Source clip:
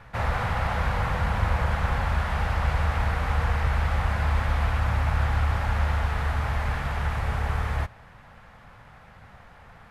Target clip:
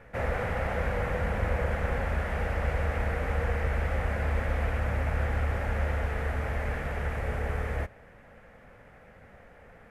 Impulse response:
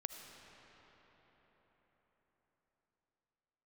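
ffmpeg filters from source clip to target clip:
-af "equalizer=f=125:t=o:w=1:g=-4,equalizer=f=250:t=o:w=1:g=4,equalizer=f=500:t=o:w=1:g=10,equalizer=f=1000:t=o:w=1:g=-8,equalizer=f=2000:t=o:w=1:g=5,equalizer=f=4000:t=o:w=1:g=-9,volume=0.631"

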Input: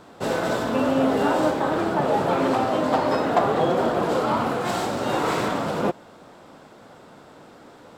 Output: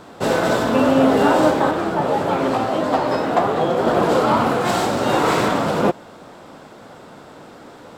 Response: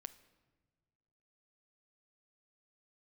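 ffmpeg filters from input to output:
-filter_complex "[0:a]asettb=1/sr,asplit=3[s0][s1][s2];[s0]atrim=end=1.714[s3];[s1]atrim=start=1.71:end=3.87,asetpts=PTS-STARTPTS,afade=t=in:d=0.004:c=qsin,afade=t=out:st=2.156:d=0.004:c=qsin,flanger=delay=9.4:depth=9.3:regen=46:speed=1.7:shape=triangular[s4];[s2]atrim=start=3.866[s5];[s3][s4]acrossfade=d=0.004:c1=hsin:c2=qsin[s6];[s6][s5]acrossfade=d=0.004:c1=qsin:c2=hsin,volume=2"

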